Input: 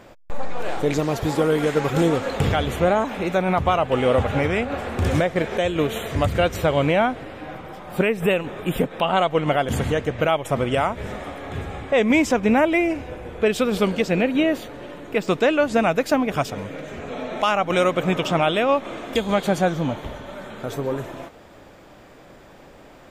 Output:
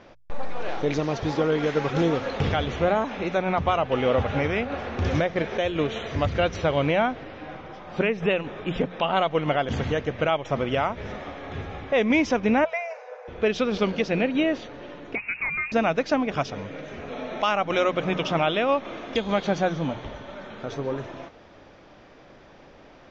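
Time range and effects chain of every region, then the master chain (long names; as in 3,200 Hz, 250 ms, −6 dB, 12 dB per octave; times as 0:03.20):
0:12.64–0:13.28: linear-phase brick-wall high-pass 430 Hz + parametric band 3,200 Hz −14 dB 0.74 octaves
0:15.15–0:15.72: downward compressor 2.5 to 1, threshold −25 dBFS + voice inversion scrambler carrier 2,700 Hz
whole clip: elliptic low-pass filter 6,100 Hz, stop band 40 dB; mains-hum notches 60/120/180 Hz; level −2.5 dB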